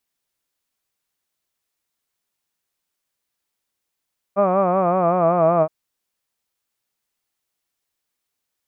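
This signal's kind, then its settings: formant-synthesis vowel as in hud, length 1.32 s, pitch 194 Hz, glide -3 st, vibrato depth 0.9 st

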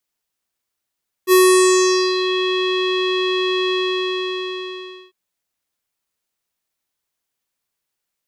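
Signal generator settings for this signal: synth note square F#4 12 dB/octave, low-pass 3.4 kHz, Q 4.6, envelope 2 oct, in 1.04 s, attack 53 ms, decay 0.82 s, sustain -10 dB, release 1.40 s, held 2.45 s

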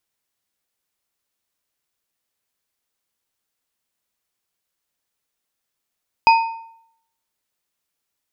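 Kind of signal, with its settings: metal hit bar, lowest mode 909 Hz, modes 3, decay 0.70 s, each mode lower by 7.5 dB, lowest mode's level -6.5 dB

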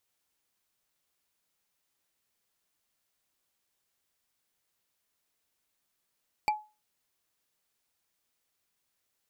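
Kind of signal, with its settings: wood hit, lowest mode 850 Hz, decay 0.29 s, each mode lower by 5 dB, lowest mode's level -20.5 dB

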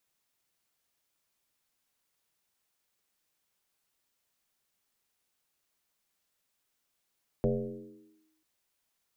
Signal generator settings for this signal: FM tone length 0.99 s, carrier 315 Hz, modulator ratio 0.29, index 2.7, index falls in 0.89 s linear, decay 1.04 s, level -22 dB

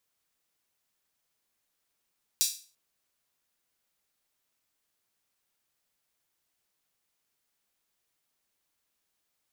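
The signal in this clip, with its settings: open hi-hat length 0.34 s, high-pass 4.7 kHz, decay 0.38 s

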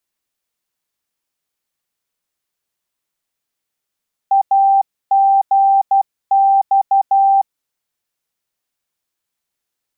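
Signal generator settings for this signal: Morse "AGX" 12 wpm 785 Hz -8.5 dBFS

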